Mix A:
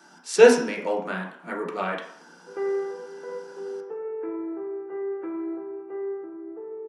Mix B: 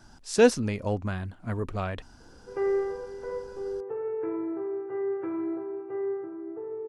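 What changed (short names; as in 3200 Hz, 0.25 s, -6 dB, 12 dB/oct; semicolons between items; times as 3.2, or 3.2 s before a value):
speech: send off; master: remove Chebyshev high-pass 170 Hz, order 5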